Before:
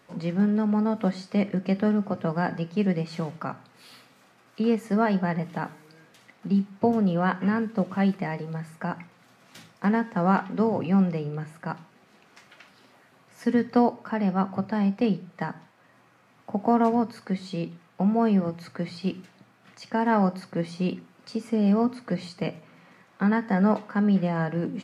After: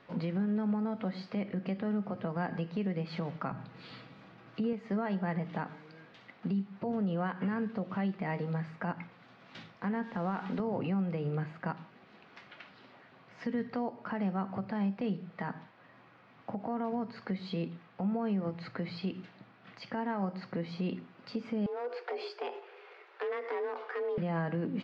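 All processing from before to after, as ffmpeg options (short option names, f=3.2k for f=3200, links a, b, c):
-filter_complex "[0:a]asettb=1/sr,asplit=3[a][b][c];[a]atrim=end=3.514[d];[b]atrim=start=3.51:end=4.73,asetpts=PTS-STARTPTS,afade=t=in:d=0.004:c=qsin,afade=t=out:st=1.216:d=0.004:c=qsin,lowshelf=f=280:g=12,aecho=1:1:6.2:0.31,atrim=end_sample=53802[e];[c]atrim=start=4.726[f];[d][e]acrossfade=d=0.004:c1=hsin:c2=qsin[g];[g][f]acrossfade=d=0.004:c1=qsin:c2=hsin,asettb=1/sr,asplit=3[h][i][j];[h]atrim=end=10.034[k];[i]atrim=start=10.03:end=10.6,asetpts=PTS-STARTPTS,afade=t=in:d=0.004:c=qsin,afade=t=out:st=0.566:d=0.004:c=qsin,highpass=44,acompressor=threshold=-28dB:ratio=6:attack=3.2:release=140:knee=1:detection=peak,acrusher=bits=7:mix=0:aa=0.5[l];[j]atrim=start=10.596[m];[k][l]acrossfade=d=0.004:c1=hsin:c2=qsin[n];[n][m]acrossfade=d=0.004:c1=qsin:c2=hsin,asettb=1/sr,asplit=3[o][p][q];[o]atrim=end=21.664[r];[p]atrim=start=21.66:end=24.18,asetpts=PTS-STARTPTS,afade=t=in:d=0.004:c=qsin,afade=t=out:st=2.516:d=0.004:c=qsin,acompressor=threshold=-30dB:ratio=10:attack=3.2:release=140:knee=1:detection=peak,asoftclip=type=hard:threshold=-30.5dB,afreqshift=240[s];[q]atrim=start=24.176[t];[r][s]acrossfade=d=0.004:c1=hsin:c2=qsin[u];[u][t]acrossfade=d=0.004:c1=qsin:c2=hsin,lowpass=f=4.2k:w=0.5412,lowpass=f=4.2k:w=1.3066,acompressor=threshold=-29dB:ratio=2.5,alimiter=level_in=1dB:limit=-24dB:level=0:latency=1:release=86,volume=-1dB"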